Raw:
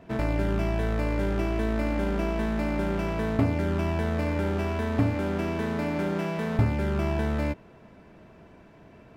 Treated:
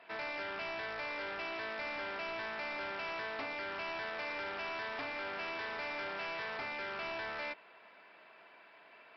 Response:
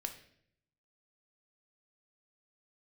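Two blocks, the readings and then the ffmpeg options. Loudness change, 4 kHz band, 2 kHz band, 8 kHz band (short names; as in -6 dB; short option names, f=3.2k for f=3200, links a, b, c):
-11.5 dB, -0.5 dB, -1.5 dB, n/a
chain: -af "highpass=950,equalizer=f=2.4k:w=1.8:g=3.5,aresample=11025,asoftclip=type=tanh:threshold=-37dB,aresample=44100,volume=1dB"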